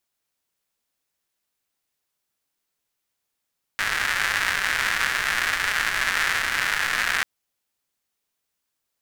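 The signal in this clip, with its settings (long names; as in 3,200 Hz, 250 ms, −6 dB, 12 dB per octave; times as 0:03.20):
rain-like ticks over hiss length 3.44 s, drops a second 250, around 1,700 Hz, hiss −17 dB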